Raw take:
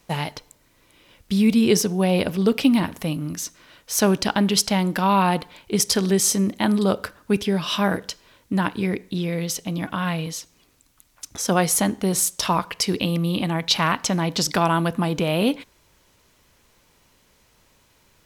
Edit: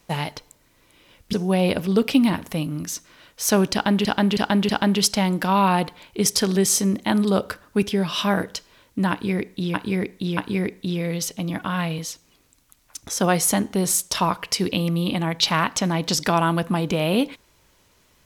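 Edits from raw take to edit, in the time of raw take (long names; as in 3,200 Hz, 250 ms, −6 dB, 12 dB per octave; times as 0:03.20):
0:01.33–0:01.83: remove
0:04.23–0:04.55: repeat, 4 plays
0:08.65–0:09.28: repeat, 3 plays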